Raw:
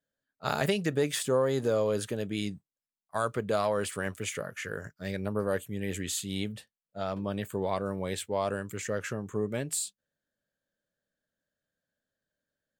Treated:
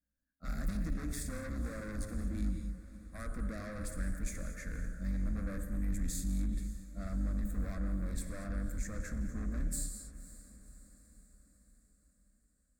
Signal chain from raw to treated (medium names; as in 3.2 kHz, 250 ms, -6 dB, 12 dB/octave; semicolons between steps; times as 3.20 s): octave divider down 2 oct, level -2 dB; in parallel at 0 dB: peak limiter -20.5 dBFS, peak gain reduction 7.5 dB; on the sum: tilt shelf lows +6 dB, about 1.1 kHz; gated-style reverb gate 260 ms flat, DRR 7 dB; saturation -22.5 dBFS, distortion -7 dB; amplifier tone stack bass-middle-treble 6-0-2; static phaser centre 600 Hz, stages 8; on a send: echo that smears into a reverb 537 ms, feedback 54%, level -16 dB; on the sum: trim +9.5 dB